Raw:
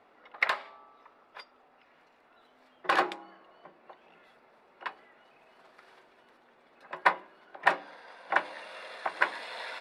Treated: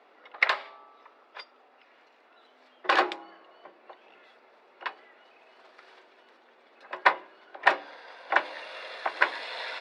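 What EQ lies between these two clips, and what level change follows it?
three-band isolator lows -18 dB, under 250 Hz, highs -19 dB, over 6.1 kHz; peaking EQ 360 Hz +6 dB 2.3 oct; treble shelf 2 kHz +10.5 dB; -2.0 dB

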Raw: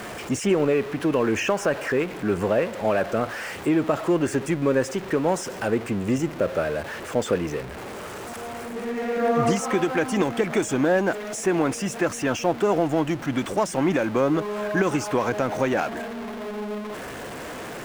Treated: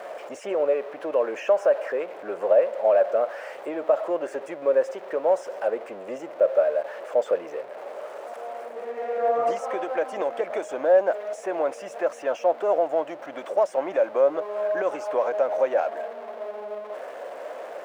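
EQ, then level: resonant high-pass 580 Hz, resonance Q 4.9; treble shelf 3.4 kHz -11.5 dB; -6.5 dB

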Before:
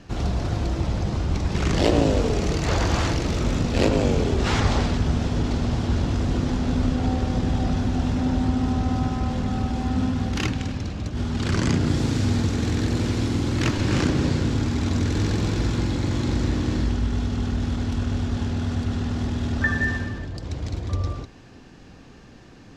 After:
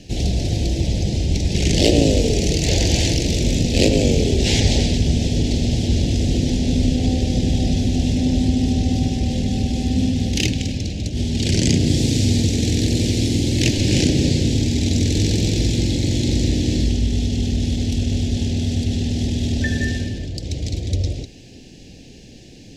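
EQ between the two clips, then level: Butterworth band-stop 1.2 kHz, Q 0.67; treble shelf 2.6 kHz +8 dB; +4.5 dB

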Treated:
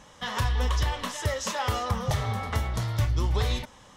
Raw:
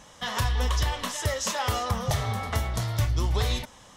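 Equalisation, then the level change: treble shelf 4.6 kHz -6 dB; band-stop 680 Hz, Q 12; 0.0 dB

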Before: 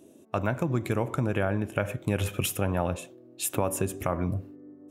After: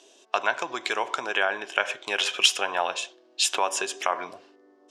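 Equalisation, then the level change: cabinet simulation 380–5400 Hz, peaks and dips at 400 Hz +8 dB, 730 Hz +9 dB, 1 kHz +9 dB, 1.6 kHz +7 dB, 3.1 kHz +6 dB, 4.9 kHz +3 dB; tilt EQ +4 dB/octave; treble shelf 2.8 kHz +12 dB; -2.0 dB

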